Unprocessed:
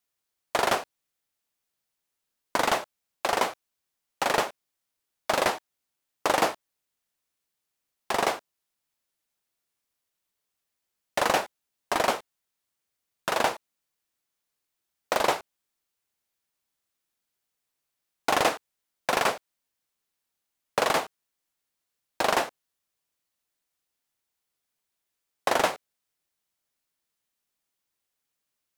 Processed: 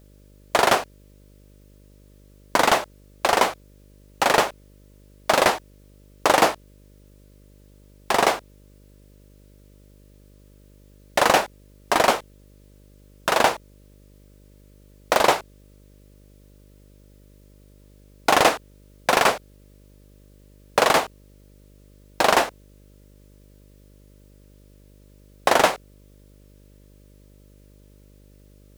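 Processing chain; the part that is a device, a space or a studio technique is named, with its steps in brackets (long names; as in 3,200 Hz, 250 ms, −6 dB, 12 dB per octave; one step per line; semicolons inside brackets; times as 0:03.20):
video cassette with head-switching buzz (hum with harmonics 50 Hz, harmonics 12, −58 dBFS −5 dB per octave; white noise bed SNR 39 dB)
level +6.5 dB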